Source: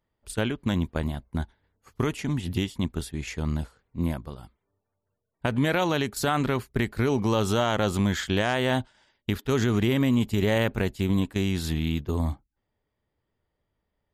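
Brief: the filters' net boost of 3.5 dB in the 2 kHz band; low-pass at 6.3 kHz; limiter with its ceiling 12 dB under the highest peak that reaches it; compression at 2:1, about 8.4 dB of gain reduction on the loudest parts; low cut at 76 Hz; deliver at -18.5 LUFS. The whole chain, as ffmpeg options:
-af "highpass=76,lowpass=6300,equalizer=f=2000:t=o:g=4.5,acompressor=threshold=0.0178:ratio=2,volume=10,alimiter=limit=0.447:level=0:latency=1"

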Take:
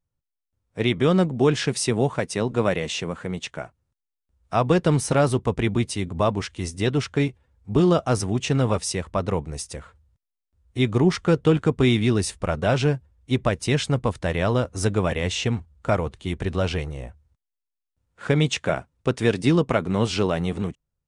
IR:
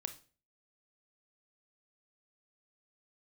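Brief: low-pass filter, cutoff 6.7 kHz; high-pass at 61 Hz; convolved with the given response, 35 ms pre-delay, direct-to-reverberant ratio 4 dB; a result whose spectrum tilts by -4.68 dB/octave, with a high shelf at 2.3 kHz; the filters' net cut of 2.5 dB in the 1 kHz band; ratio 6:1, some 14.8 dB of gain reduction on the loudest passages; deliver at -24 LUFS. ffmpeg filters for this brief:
-filter_complex "[0:a]highpass=61,lowpass=6700,equalizer=f=1000:t=o:g=-5,highshelf=f=2300:g=6.5,acompressor=threshold=0.0282:ratio=6,asplit=2[s0][s1];[1:a]atrim=start_sample=2205,adelay=35[s2];[s1][s2]afir=irnorm=-1:irlink=0,volume=0.794[s3];[s0][s3]amix=inputs=2:normalize=0,volume=3.16"

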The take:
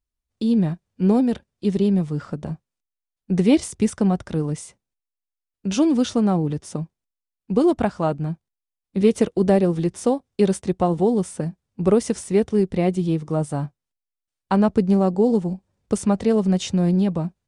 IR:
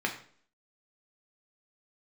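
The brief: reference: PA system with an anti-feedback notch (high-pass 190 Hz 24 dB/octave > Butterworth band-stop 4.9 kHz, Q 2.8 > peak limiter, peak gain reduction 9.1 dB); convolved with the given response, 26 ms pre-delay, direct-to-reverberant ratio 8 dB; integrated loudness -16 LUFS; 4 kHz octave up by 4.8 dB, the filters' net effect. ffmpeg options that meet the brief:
-filter_complex "[0:a]equalizer=f=4000:t=o:g=8,asplit=2[s0][s1];[1:a]atrim=start_sample=2205,adelay=26[s2];[s1][s2]afir=irnorm=-1:irlink=0,volume=0.158[s3];[s0][s3]amix=inputs=2:normalize=0,highpass=f=190:w=0.5412,highpass=f=190:w=1.3066,asuperstop=centerf=4900:order=8:qfactor=2.8,volume=2.66,alimiter=limit=0.562:level=0:latency=1"

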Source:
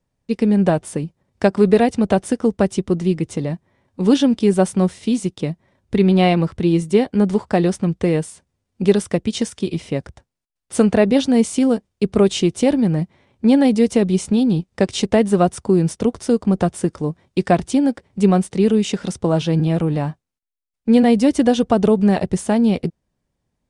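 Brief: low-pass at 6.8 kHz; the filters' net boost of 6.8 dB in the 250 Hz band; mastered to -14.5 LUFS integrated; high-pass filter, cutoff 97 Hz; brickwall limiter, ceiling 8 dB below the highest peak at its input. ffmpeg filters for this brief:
-af "highpass=97,lowpass=6800,equalizer=f=250:t=o:g=8.5,volume=1.12,alimiter=limit=0.631:level=0:latency=1"

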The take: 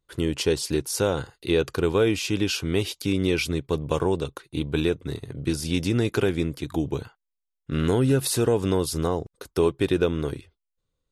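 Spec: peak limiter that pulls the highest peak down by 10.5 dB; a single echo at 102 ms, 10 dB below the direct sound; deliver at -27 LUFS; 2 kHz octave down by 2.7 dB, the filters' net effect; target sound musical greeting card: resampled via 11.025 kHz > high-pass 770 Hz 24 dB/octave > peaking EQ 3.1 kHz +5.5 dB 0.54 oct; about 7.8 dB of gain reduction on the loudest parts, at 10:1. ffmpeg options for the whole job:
-af "equalizer=f=2000:t=o:g=-6.5,acompressor=threshold=0.0562:ratio=10,alimiter=limit=0.0631:level=0:latency=1,aecho=1:1:102:0.316,aresample=11025,aresample=44100,highpass=f=770:w=0.5412,highpass=f=770:w=1.3066,equalizer=f=3100:t=o:w=0.54:g=5.5,volume=5.01"

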